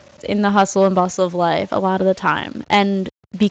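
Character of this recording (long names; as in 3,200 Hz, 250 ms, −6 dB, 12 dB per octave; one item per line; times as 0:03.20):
a quantiser's noise floor 8 bits, dither none
Speex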